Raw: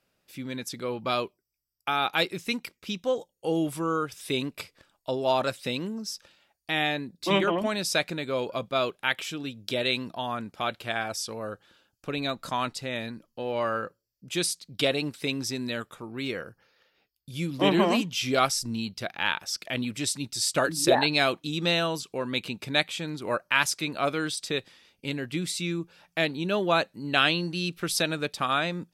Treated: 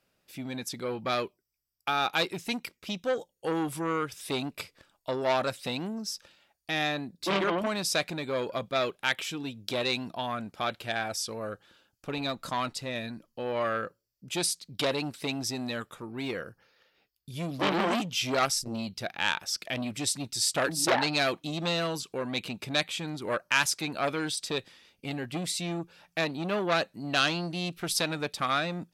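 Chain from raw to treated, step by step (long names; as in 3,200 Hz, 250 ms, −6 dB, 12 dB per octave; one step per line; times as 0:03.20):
saturating transformer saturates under 2,800 Hz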